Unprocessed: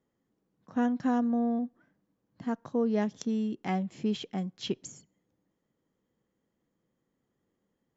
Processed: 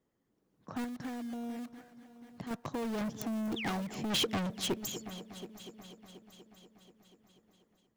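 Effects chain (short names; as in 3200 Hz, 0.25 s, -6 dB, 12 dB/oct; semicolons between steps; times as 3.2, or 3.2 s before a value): self-modulated delay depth 0.19 ms; in parallel at -10 dB: wrapped overs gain 33 dB; 0.84–2.51 on the sum: compressor 1.5:1, threshold -51 dBFS, peak gain reduction 9.5 dB; 3.01–3.52 ten-band EQ 125 Hz +7 dB, 250 Hz +5 dB, 500 Hz -7 dB, 1000 Hz +6 dB, 4000 Hz -5 dB; 3.56–3.82 painted sound fall 520–3800 Hz -44 dBFS; 4.1–4.54 sample leveller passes 3; multi-head echo 0.242 s, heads first and third, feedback 56%, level -19.5 dB; soft clip -31 dBFS, distortion -8 dB; harmonic-percussive split harmonic -8 dB; AGC gain up to 6 dB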